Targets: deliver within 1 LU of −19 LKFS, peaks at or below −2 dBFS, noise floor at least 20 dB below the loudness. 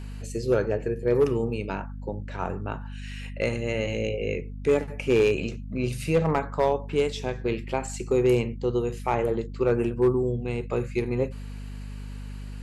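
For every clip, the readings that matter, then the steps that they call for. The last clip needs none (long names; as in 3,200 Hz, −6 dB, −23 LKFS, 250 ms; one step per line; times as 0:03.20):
share of clipped samples 0.4%; peaks flattened at −14.0 dBFS; mains hum 50 Hz; hum harmonics up to 250 Hz; level of the hum −34 dBFS; integrated loudness −26.5 LKFS; sample peak −14.0 dBFS; target loudness −19.0 LKFS
→ clipped peaks rebuilt −14 dBFS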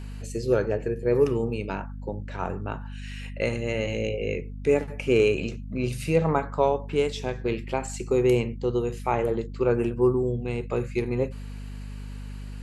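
share of clipped samples 0.0%; mains hum 50 Hz; hum harmonics up to 250 Hz; level of the hum −34 dBFS
→ mains-hum notches 50/100/150/200/250 Hz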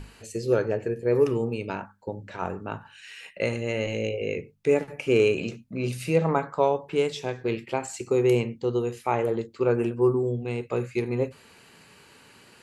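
mains hum none found; integrated loudness −26.5 LKFS; sample peak −8.5 dBFS; target loudness −19.0 LKFS
→ level +7.5 dB
brickwall limiter −2 dBFS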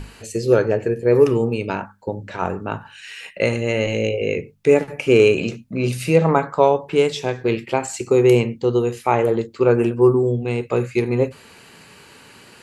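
integrated loudness −19.0 LKFS; sample peak −2.0 dBFS; background noise floor −47 dBFS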